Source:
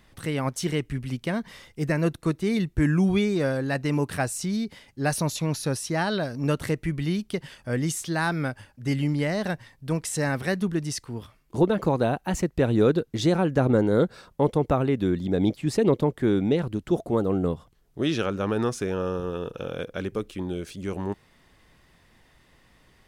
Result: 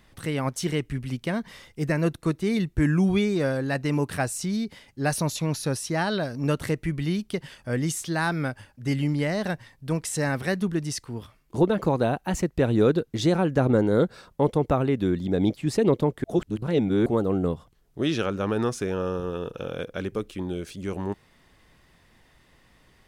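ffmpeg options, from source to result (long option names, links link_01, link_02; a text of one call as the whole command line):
ffmpeg -i in.wav -filter_complex "[0:a]asplit=3[link_01][link_02][link_03];[link_01]atrim=end=16.242[link_04];[link_02]atrim=start=16.238:end=17.062,asetpts=PTS-STARTPTS,areverse[link_05];[link_03]atrim=start=17.058[link_06];[link_04][link_05]acrossfade=duration=0.004:curve1=hsin:curve2=hsin[link_07];[link_07][link_06]acrossfade=duration=0.004:curve1=hsin:curve2=hsin" out.wav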